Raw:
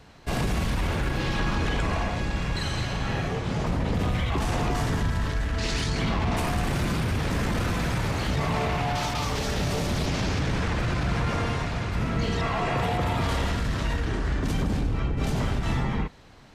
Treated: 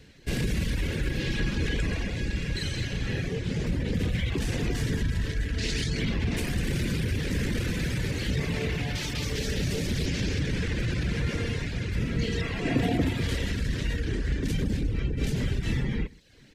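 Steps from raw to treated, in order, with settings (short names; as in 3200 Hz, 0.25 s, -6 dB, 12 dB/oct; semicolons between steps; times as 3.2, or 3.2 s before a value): band shelf 920 Hz -14.5 dB 1.3 oct; on a send: echo 0.127 s -13 dB; on the sum: reverb removal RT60 0.57 s; 12.65–13.09 small resonant body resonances 270/680 Hz, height 14 dB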